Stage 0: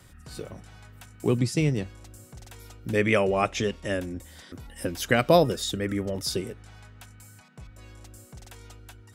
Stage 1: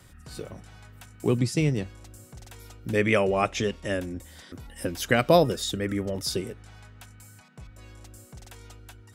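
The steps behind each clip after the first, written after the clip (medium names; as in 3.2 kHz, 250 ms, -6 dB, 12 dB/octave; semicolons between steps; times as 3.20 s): no audible change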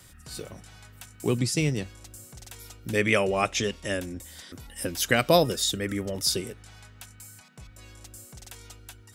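treble shelf 2.6 kHz +9 dB; trim -2 dB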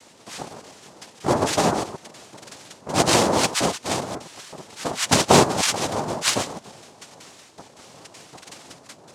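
chunks repeated in reverse 122 ms, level -10 dB; noise-vocoded speech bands 2; Chebyshev shaper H 5 -24 dB, 7 -25 dB, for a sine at -5.5 dBFS; trim +4.5 dB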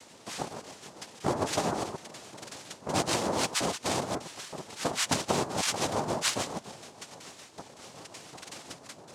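tremolo 7 Hz, depth 38%; compression 8:1, threshold -25 dBFS, peak gain reduction 13.5 dB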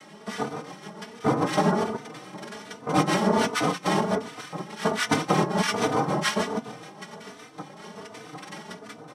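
reverberation RT60 0.15 s, pre-delay 3 ms, DRR 5 dB; endless flanger 3.3 ms +1.3 Hz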